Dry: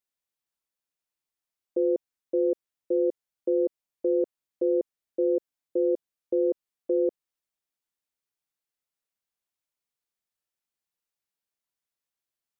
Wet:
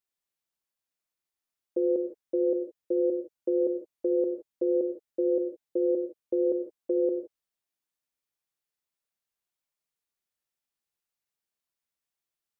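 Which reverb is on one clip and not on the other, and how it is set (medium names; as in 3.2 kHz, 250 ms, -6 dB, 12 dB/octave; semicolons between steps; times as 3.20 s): gated-style reverb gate 190 ms flat, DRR 5.5 dB; trim -1.5 dB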